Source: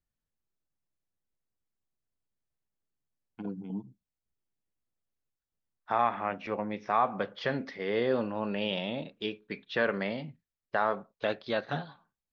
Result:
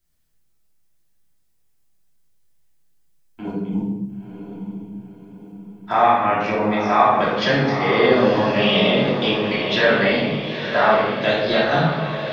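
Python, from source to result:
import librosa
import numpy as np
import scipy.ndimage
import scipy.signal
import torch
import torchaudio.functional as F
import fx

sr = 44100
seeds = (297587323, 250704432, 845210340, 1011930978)

p1 = fx.high_shelf(x, sr, hz=3700.0, db=10.0)
p2 = fx.level_steps(p1, sr, step_db=18)
p3 = p1 + (p2 * librosa.db_to_amplitude(1.0))
p4 = fx.echo_diffused(p3, sr, ms=951, feedback_pct=49, wet_db=-7.5)
p5 = fx.room_shoebox(p4, sr, seeds[0], volume_m3=420.0, walls='mixed', distance_m=2.9)
y = p5 * librosa.db_to_amplitude(1.0)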